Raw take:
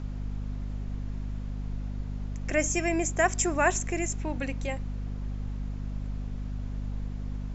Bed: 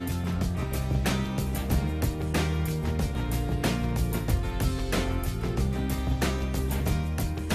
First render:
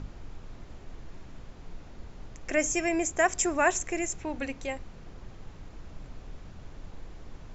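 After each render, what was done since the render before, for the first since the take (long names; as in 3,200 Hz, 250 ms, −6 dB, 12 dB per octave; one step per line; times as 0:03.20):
mains-hum notches 50/100/150/200/250 Hz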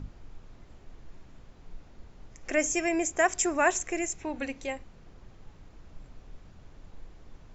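noise reduction from a noise print 6 dB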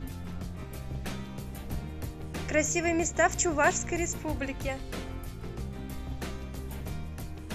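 mix in bed −10.5 dB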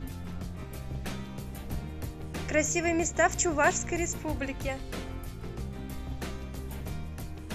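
no processing that can be heard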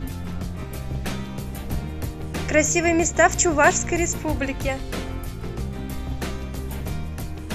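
level +8 dB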